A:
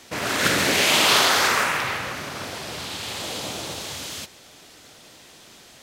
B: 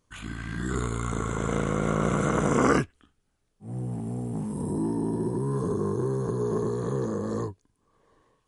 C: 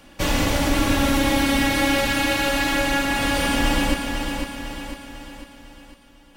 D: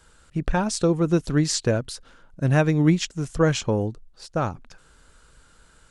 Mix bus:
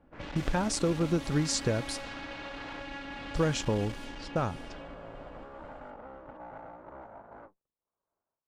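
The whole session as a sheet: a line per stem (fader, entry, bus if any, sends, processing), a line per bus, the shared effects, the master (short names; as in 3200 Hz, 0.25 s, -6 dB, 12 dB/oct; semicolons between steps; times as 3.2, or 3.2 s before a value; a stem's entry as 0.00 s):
-15.5 dB, 0.00 s, bus A, no send, compressor, threshold -23 dBFS, peak gain reduction 9.5 dB
-16.5 dB, 0.00 s, bus A, no send, full-wave rectifier; bell 990 Hz +11.5 dB 2.5 oct; notch 750 Hz, Q 19
-1.0 dB, 0.00 s, bus A, no send, LPF 6500 Hz 12 dB/oct; auto duck -8 dB, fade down 0.25 s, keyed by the fourth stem
-1.5 dB, 0.00 s, muted 2.34–3.34, no bus, no send, compressor 2:1, threshold -27 dBFS, peak gain reduction 8 dB
bus A: 0.0 dB, one-sided clip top -32 dBFS; compressor 2:1, threshold -45 dBFS, peak gain reduction 10.5 dB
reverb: off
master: gate -46 dBFS, range -10 dB; low-pass opened by the level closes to 890 Hz, open at -31.5 dBFS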